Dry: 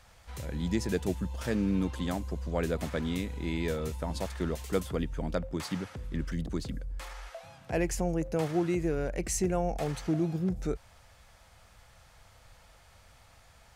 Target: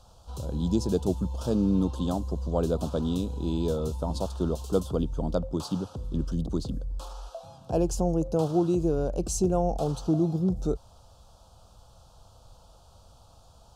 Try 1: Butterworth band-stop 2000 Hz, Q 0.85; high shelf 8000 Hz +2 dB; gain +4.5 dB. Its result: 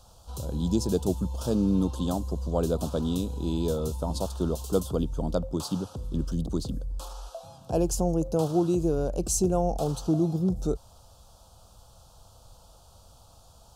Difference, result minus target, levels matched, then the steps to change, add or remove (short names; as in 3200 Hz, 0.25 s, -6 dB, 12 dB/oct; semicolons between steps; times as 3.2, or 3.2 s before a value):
8000 Hz band +4.5 dB
change: high shelf 8000 Hz -9 dB